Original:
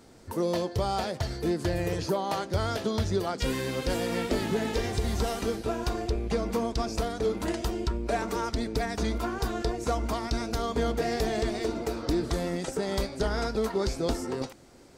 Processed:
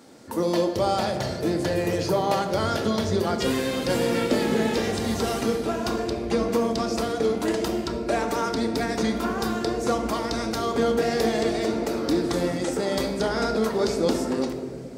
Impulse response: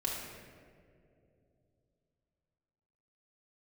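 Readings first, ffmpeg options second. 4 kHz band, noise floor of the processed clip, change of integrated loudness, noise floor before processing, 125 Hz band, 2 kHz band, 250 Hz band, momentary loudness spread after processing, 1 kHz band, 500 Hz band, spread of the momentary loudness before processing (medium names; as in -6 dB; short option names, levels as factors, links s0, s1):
+5.0 dB, -32 dBFS, +5.0 dB, -47 dBFS, +0.5 dB, +5.0 dB, +6.0 dB, 4 LU, +5.0 dB, +6.0 dB, 3 LU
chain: -filter_complex "[0:a]highpass=200,asplit=2[s0][s1];[1:a]atrim=start_sample=2205,lowshelf=f=180:g=10[s2];[s1][s2]afir=irnorm=-1:irlink=0,volume=0.668[s3];[s0][s3]amix=inputs=2:normalize=0"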